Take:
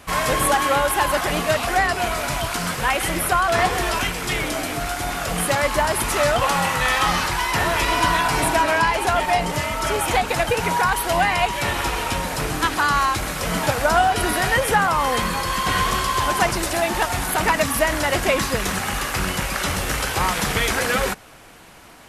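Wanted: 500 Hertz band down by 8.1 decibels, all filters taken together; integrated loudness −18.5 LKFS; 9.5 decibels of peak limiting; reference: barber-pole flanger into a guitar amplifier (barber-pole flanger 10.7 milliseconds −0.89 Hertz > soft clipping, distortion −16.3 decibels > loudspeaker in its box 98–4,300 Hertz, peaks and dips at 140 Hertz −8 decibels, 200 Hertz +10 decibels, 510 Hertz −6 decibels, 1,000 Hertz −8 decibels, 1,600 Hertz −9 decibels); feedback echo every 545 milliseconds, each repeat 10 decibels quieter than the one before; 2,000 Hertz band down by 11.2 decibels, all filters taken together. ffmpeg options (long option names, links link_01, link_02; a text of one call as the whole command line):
ffmpeg -i in.wav -filter_complex "[0:a]equalizer=frequency=500:width_type=o:gain=-7,equalizer=frequency=2000:width_type=o:gain=-8.5,alimiter=limit=-18.5dB:level=0:latency=1,aecho=1:1:545|1090|1635|2180:0.316|0.101|0.0324|0.0104,asplit=2[link_01][link_02];[link_02]adelay=10.7,afreqshift=-0.89[link_03];[link_01][link_03]amix=inputs=2:normalize=1,asoftclip=threshold=-25.5dB,highpass=98,equalizer=frequency=140:width_type=q:width=4:gain=-8,equalizer=frequency=200:width_type=q:width=4:gain=10,equalizer=frequency=510:width_type=q:width=4:gain=-6,equalizer=frequency=1000:width_type=q:width=4:gain=-8,equalizer=frequency=1600:width_type=q:width=4:gain=-9,lowpass=frequency=4300:width=0.5412,lowpass=frequency=4300:width=1.3066,volume=17dB" out.wav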